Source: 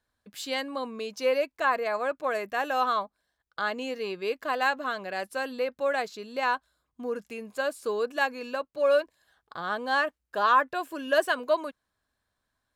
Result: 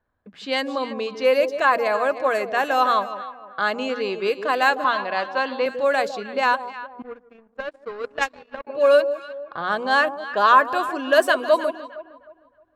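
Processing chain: hum notches 60/120/180/240/300 Hz; echo whose repeats swap between lows and highs 155 ms, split 880 Hz, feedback 56%, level -9 dB; 7.02–8.67 s: power-law waveshaper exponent 2; level-controlled noise filter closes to 1.4 kHz, open at -24 dBFS; 4.84–5.66 s: cabinet simulation 200–5800 Hz, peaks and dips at 430 Hz -5 dB, 1 kHz +9 dB, 3.4 kHz +4 dB; trim +7 dB

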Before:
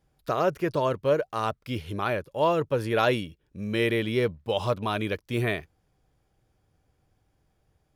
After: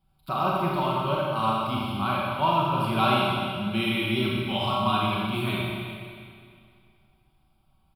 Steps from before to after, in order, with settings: static phaser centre 1.8 kHz, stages 6; comb 5.3 ms, depth 50%; Schroeder reverb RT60 2.2 s, combs from 28 ms, DRR -4.5 dB

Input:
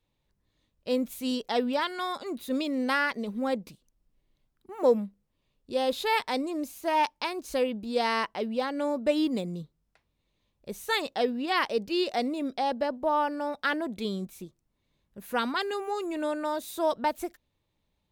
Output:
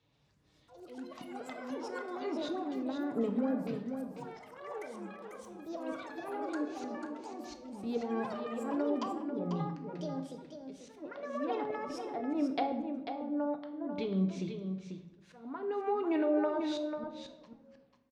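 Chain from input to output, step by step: tape stop on the ending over 1.14 s; low-pass 6.2 kHz 24 dB/octave; de-hum 181.6 Hz, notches 5; low-pass that closes with the level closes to 310 Hz, closed at -23 dBFS; high-pass 57 Hz 24 dB/octave; comb 7.1 ms, depth 33%; compression 8:1, threshold -33 dBFS, peak gain reduction 11 dB; slow attack 601 ms; ever faster or slower copies 123 ms, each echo +6 st, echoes 3, each echo -6 dB; on a send: delay 493 ms -7.5 dB; on the sum: simulated room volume 300 m³, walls mixed, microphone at 0.54 m; trim +4.5 dB

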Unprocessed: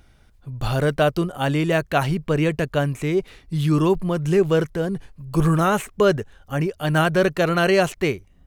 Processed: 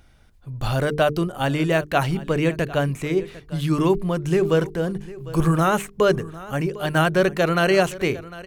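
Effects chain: hum notches 50/100/150/200/250/300/350/400/450 Hz; on a send: delay 752 ms -18 dB

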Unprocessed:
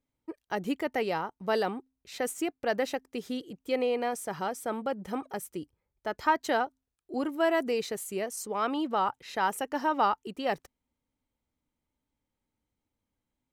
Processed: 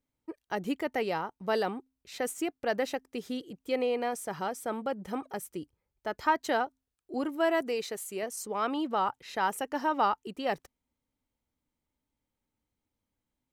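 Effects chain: 7.61–8.23 s: bass shelf 180 Hz -11 dB; trim -1 dB

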